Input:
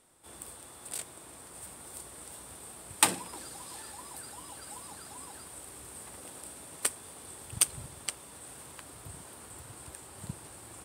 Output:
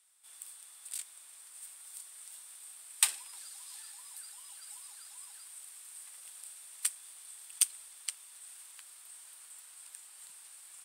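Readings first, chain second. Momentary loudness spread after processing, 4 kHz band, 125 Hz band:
19 LU, -3.0 dB, under -40 dB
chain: Bessel high-pass 2600 Hz, order 2; gain -1.5 dB

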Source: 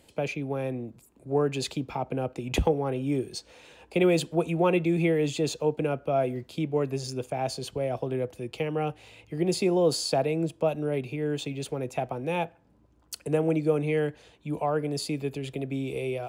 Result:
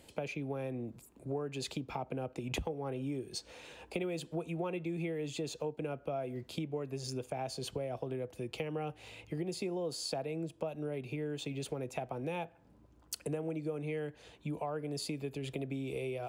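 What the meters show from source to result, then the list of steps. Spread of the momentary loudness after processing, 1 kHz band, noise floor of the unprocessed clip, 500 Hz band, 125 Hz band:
5 LU, -10.5 dB, -61 dBFS, -11.0 dB, -9.5 dB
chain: compressor 6:1, threshold -35 dBFS, peak gain reduction 16 dB

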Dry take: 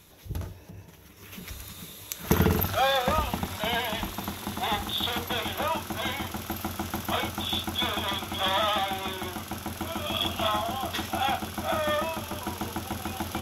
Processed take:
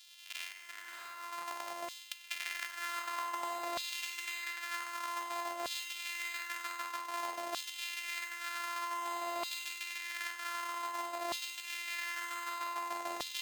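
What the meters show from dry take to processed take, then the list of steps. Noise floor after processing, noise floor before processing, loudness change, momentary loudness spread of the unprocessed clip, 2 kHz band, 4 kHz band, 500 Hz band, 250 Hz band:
-52 dBFS, -49 dBFS, -10.0 dB, 14 LU, -5.0 dB, -11.5 dB, -15.0 dB, -21.5 dB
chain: sample sorter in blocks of 128 samples; diffused feedback echo 0.633 s, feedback 43%, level -8 dB; Schroeder reverb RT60 3.1 s, combs from 33 ms, DRR 12.5 dB; LFO high-pass saw down 0.53 Hz 640–3700 Hz; reverse; compressor 6:1, threshold -37 dBFS, peak gain reduction 18 dB; reverse; gain +1 dB

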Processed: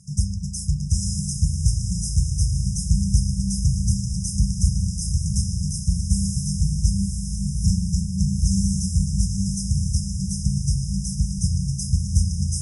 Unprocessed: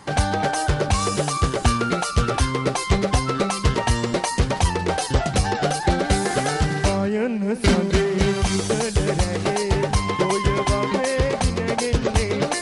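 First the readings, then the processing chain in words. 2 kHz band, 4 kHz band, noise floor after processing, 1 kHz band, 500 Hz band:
under -40 dB, -7.0 dB, -29 dBFS, under -40 dB, under -40 dB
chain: diffused feedback echo 0.929 s, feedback 44%, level -4 dB; spring tank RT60 3.8 s, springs 36 ms, DRR 5 dB; FFT band-reject 200–5000 Hz

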